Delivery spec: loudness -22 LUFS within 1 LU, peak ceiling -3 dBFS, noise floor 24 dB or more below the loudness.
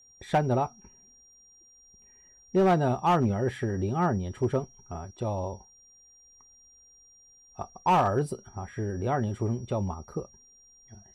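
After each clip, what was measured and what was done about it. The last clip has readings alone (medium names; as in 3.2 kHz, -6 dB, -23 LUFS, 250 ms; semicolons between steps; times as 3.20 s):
clipped samples 0.5%; clipping level -17.0 dBFS; steady tone 5.7 kHz; tone level -55 dBFS; loudness -28.5 LUFS; peak level -17.0 dBFS; loudness target -22.0 LUFS
-> clip repair -17 dBFS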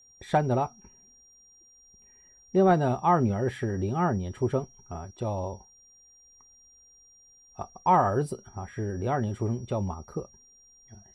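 clipped samples 0.0%; steady tone 5.7 kHz; tone level -55 dBFS
-> band-stop 5.7 kHz, Q 30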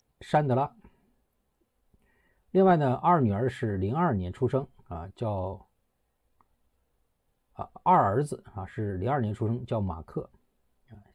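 steady tone not found; loudness -27.5 LUFS; peak level -10.0 dBFS; loudness target -22.0 LUFS
-> trim +5.5 dB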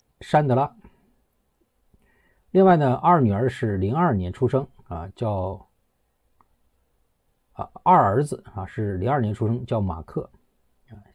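loudness -22.0 LUFS; peak level -4.5 dBFS; noise floor -71 dBFS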